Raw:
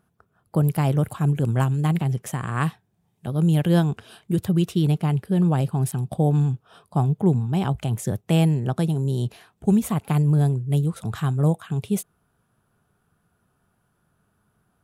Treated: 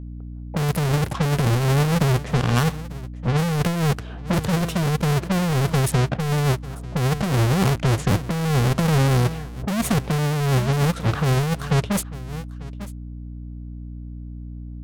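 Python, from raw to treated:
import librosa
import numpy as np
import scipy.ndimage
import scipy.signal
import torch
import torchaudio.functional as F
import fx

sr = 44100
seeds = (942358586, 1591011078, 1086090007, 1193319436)

p1 = fx.halfwave_hold(x, sr)
p2 = fx.env_lowpass(p1, sr, base_hz=480.0, full_db=-16.5)
p3 = p2 + fx.echo_single(p2, sr, ms=894, db=-20.5, dry=0)
p4 = fx.add_hum(p3, sr, base_hz=60, snr_db=18)
y = fx.over_compress(p4, sr, threshold_db=-19.0, ratio=-1.0)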